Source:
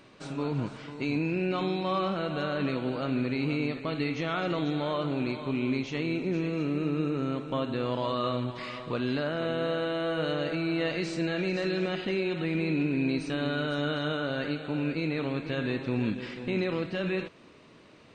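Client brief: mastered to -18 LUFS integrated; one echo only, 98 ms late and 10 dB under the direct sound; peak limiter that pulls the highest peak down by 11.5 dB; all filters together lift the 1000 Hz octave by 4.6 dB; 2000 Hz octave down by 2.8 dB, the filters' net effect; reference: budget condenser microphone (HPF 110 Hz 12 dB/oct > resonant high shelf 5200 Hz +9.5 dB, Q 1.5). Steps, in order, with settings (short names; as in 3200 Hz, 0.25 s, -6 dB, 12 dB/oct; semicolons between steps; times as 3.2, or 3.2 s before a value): bell 1000 Hz +8 dB; bell 2000 Hz -6 dB; limiter -27 dBFS; HPF 110 Hz 12 dB/oct; resonant high shelf 5200 Hz +9.5 dB, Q 1.5; echo 98 ms -10 dB; gain +18 dB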